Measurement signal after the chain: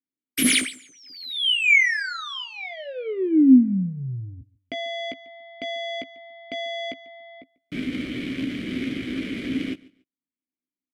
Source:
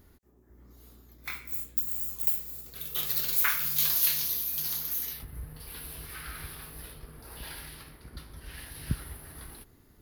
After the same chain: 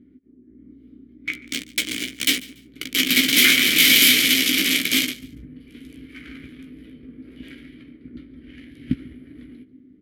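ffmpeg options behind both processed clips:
-filter_complex "[0:a]aexciter=amount=5.2:drive=4.5:freq=8700,adynamicsmooth=sensitivity=4:basefreq=690,crystalizer=i=3.5:c=0,asplit=3[s0][s1][s2];[s0]bandpass=f=270:t=q:w=8,volume=1[s3];[s1]bandpass=f=2290:t=q:w=8,volume=0.501[s4];[s2]bandpass=f=3010:t=q:w=8,volume=0.355[s5];[s3][s4][s5]amix=inputs=3:normalize=0,asplit=2[s6][s7];[s7]adelay=16,volume=0.422[s8];[s6][s8]amix=inputs=2:normalize=0,aecho=1:1:143|286:0.0794|0.0183,alimiter=level_in=15:limit=0.891:release=50:level=0:latency=1,volume=0.891"

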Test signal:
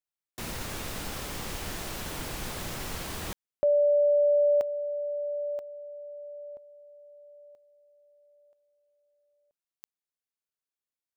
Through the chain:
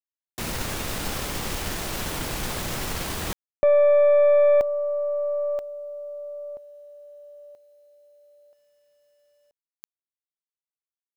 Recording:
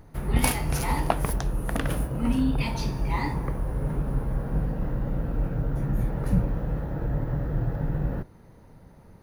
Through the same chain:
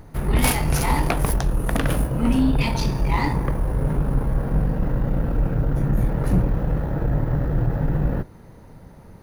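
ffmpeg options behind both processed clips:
-af "aeval=exprs='0.562*sin(PI/2*2.82*val(0)/0.562)':c=same,acrusher=bits=10:mix=0:aa=0.000001,aeval=exprs='0.562*(cos(1*acos(clip(val(0)/0.562,-1,1)))-cos(1*PI/2))+0.0447*(cos(4*acos(clip(val(0)/0.562,-1,1)))-cos(4*PI/2))':c=same,volume=0.473"

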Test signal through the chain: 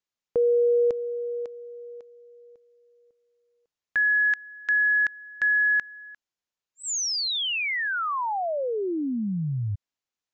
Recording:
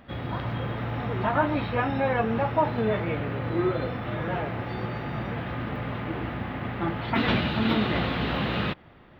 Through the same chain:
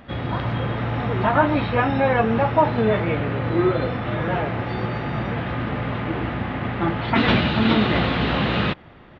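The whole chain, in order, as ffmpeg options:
-af "aresample=16000,aresample=44100,volume=2"

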